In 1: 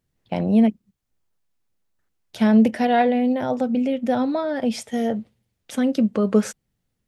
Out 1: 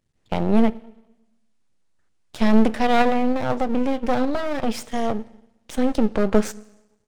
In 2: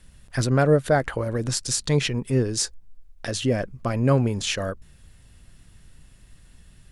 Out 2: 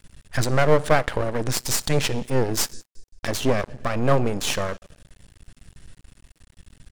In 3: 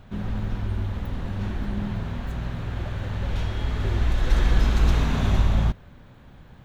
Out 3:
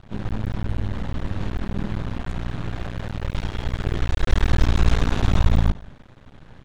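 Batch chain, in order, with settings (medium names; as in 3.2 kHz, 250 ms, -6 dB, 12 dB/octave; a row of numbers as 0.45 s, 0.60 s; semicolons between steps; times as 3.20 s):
resampled via 22.05 kHz; Schroeder reverb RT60 0.96 s, DRR 19 dB; half-wave rectifier; peak normalisation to -3 dBFS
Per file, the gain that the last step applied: +4.0 dB, +6.0 dB, +5.0 dB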